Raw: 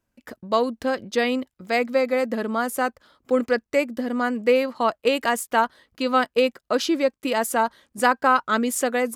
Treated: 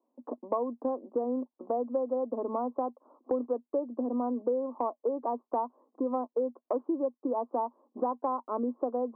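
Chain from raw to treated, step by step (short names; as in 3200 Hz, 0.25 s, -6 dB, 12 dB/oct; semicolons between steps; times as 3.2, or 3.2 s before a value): Chebyshev band-pass 240–1100 Hz, order 5; compressor 4:1, threshold -35 dBFS, peak gain reduction 17 dB; gain +5 dB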